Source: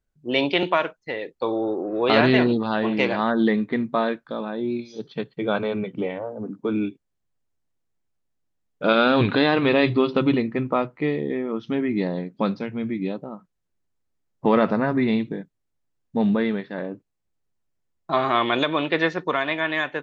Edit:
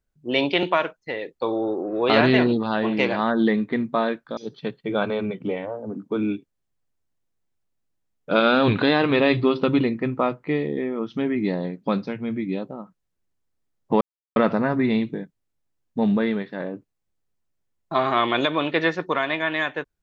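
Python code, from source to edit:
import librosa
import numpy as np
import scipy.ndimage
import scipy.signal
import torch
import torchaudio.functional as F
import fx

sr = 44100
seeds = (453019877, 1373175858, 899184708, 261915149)

y = fx.edit(x, sr, fx.cut(start_s=4.37, length_s=0.53),
    fx.insert_silence(at_s=14.54, length_s=0.35), tone=tone)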